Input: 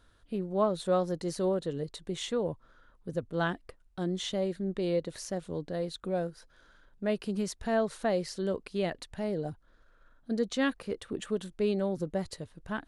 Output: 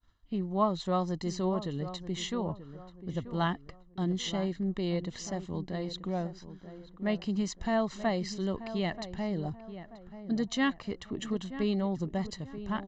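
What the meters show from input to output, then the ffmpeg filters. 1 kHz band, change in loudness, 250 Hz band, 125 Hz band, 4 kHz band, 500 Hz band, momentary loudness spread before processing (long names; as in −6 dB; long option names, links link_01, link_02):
+2.0 dB, −0.5 dB, +2.0 dB, +3.0 dB, +1.5 dB, −4.0 dB, 9 LU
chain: -filter_complex "[0:a]agate=range=-33dB:threshold=-55dB:ratio=3:detection=peak,aecho=1:1:1:0.59,asplit=2[link_01][link_02];[link_02]adelay=933,lowpass=frequency=1500:poles=1,volume=-12dB,asplit=2[link_03][link_04];[link_04]adelay=933,lowpass=frequency=1500:poles=1,volume=0.39,asplit=2[link_05][link_06];[link_06]adelay=933,lowpass=frequency=1500:poles=1,volume=0.39,asplit=2[link_07][link_08];[link_08]adelay=933,lowpass=frequency=1500:poles=1,volume=0.39[link_09];[link_03][link_05][link_07][link_09]amix=inputs=4:normalize=0[link_10];[link_01][link_10]amix=inputs=2:normalize=0,aresample=16000,aresample=44100"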